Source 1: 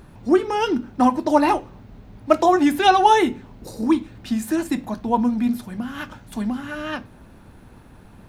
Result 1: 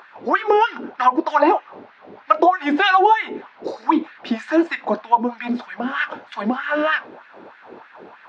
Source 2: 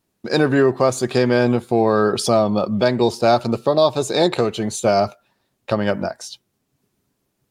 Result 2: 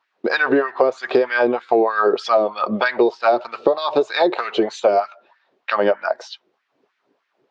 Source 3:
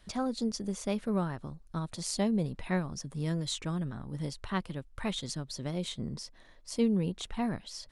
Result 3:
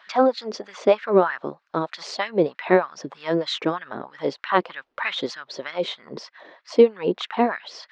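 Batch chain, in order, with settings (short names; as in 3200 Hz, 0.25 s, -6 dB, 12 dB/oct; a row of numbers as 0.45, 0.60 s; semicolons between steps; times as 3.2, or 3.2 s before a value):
LFO high-pass sine 3.2 Hz 360–1800 Hz; compressor 6:1, threshold -20 dBFS; Gaussian blur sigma 2.2 samples; normalise peaks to -2 dBFS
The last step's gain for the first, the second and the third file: +8.5, +7.0, +13.5 dB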